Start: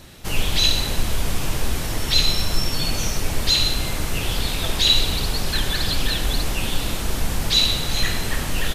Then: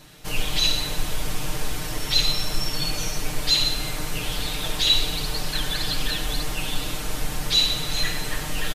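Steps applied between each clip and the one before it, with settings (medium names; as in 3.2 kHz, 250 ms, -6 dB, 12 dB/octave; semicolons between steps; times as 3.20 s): bass shelf 340 Hz -3 dB; comb 6.6 ms, depth 72%; trim -4.5 dB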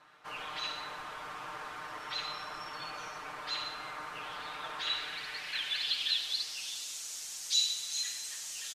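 band-pass sweep 1.2 kHz -> 6.5 kHz, 4.72–6.86 s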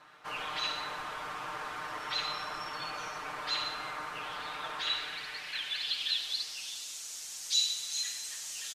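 gain riding within 4 dB 2 s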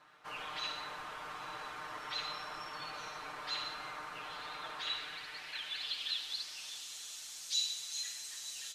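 echo that smears into a reverb 912 ms, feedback 44%, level -13.5 dB; trim -5.5 dB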